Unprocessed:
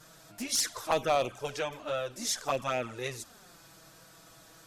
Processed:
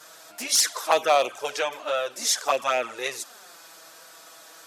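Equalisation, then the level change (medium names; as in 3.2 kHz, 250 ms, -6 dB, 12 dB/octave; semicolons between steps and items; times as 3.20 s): high-pass 500 Hz 12 dB/octave; +8.5 dB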